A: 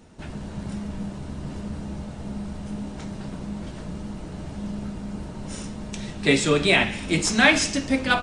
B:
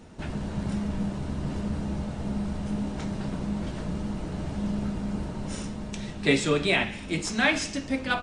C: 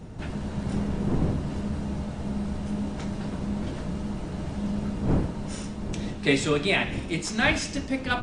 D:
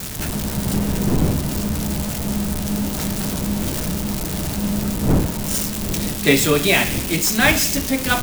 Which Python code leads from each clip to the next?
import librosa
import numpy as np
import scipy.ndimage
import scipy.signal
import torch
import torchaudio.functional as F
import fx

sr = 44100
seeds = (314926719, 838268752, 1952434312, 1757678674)

y1 = fx.high_shelf(x, sr, hz=6000.0, db=-4.5)
y1 = fx.rider(y1, sr, range_db=5, speed_s=2.0)
y1 = F.gain(torch.from_numpy(y1), -2.5).numpy()
y2 = fx.dmg_wind(y1, sr, seeds[0], corner_hz=230.0, level_db=-34.0)
y3 = y2 + 0.5 * 10.0 ** (-20.5 / 20.0) * np.diff(np.sign(y2), prepend=np.sign(y2[:1]))
y3 = F.gain(torch.from_numpy(y3), 7.0).numpy()